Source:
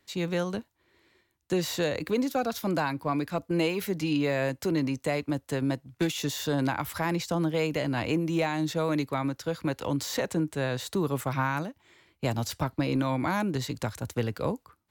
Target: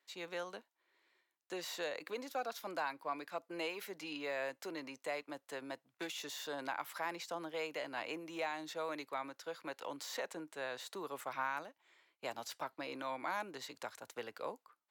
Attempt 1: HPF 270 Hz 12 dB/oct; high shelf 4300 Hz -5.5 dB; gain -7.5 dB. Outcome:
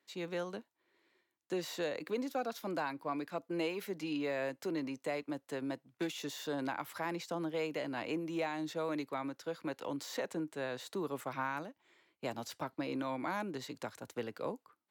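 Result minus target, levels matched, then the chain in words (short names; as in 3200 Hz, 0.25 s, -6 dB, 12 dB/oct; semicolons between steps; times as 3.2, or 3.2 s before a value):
250 Hz band +6.5 dB
HPF 600 Hz 12 dB/oct; high shelf 4300 Hz -5.5 dB; gain -7.5 dB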